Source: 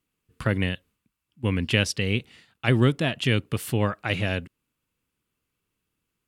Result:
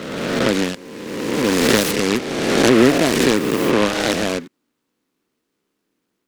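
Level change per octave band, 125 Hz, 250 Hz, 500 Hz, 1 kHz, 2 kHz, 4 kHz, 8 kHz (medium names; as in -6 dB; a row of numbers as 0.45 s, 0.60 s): -3.0 dB, +10.5 dB, +12.0 dB, +11.5 dB, +7.0 dB, +8.0 dB, +14.5 dB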